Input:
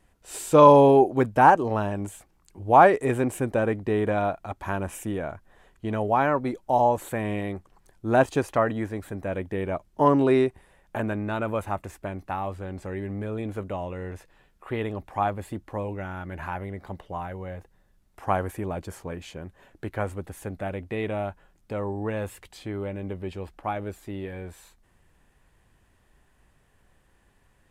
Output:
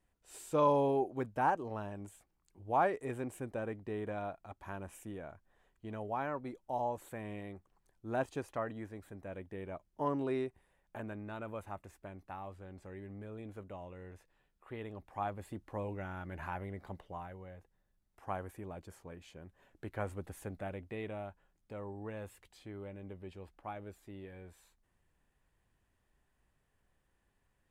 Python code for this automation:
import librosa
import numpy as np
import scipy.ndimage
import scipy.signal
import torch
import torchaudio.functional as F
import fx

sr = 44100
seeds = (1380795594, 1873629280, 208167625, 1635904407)

y = fx.gain(x, sr, db=fx.line((14.8, -15.0), (15.85, -8.0), (16.86, -8.0), (17.52, -14.5), (19.21, -14.5), (20.3, -7.5), (21.29, -14.0)))